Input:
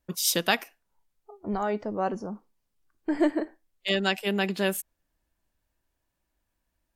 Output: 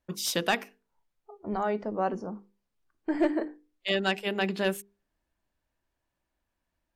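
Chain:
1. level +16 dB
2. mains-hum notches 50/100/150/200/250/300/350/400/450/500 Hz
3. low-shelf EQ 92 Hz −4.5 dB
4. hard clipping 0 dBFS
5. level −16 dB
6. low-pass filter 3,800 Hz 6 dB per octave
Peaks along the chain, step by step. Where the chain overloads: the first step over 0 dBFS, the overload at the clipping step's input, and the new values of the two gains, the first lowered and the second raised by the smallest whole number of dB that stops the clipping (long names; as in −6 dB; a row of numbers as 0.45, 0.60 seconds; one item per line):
+7.0, +7.0, +7.5, 0.0, −16.0, −16.0 dBFS
step 1, 7.5 dB
step 1 +8 dB, step 5 −8 dB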